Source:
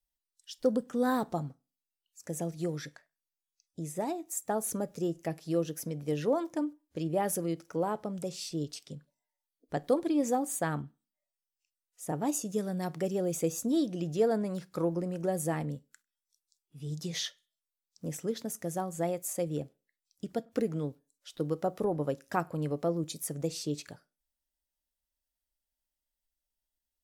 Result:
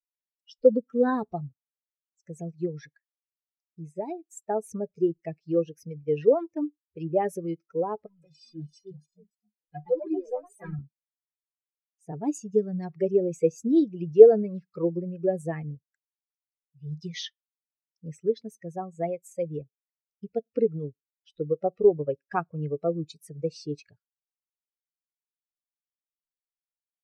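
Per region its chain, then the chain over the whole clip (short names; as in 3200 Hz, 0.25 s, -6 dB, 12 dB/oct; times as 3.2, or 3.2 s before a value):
8.06–10.79 G.711 law mismatch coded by mu + metallic resonator 150 Hz, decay 0.2 s, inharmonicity 0.03 + echoes that change speed 0.387 s, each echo +3 st, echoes 2, each echo -6 dB
whole clip: per-bin expansion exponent 2; Bessel low-pass 4000 Hz, order 2; bell 430 Hz +14.5 dB 0.54 oct; gain +4.5 dB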